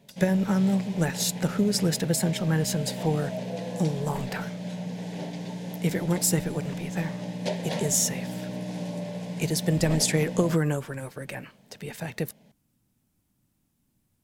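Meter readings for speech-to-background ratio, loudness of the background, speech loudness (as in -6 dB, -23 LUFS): 7.5 dB, -34.5 LUFS, -27.0 LUFS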